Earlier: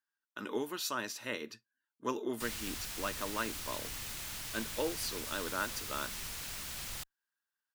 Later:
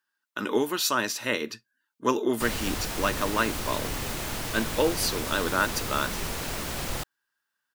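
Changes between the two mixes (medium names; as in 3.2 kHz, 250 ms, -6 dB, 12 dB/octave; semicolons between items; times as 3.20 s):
speech +11.0 dB; background: remove amplifier tone stack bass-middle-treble 5-5-5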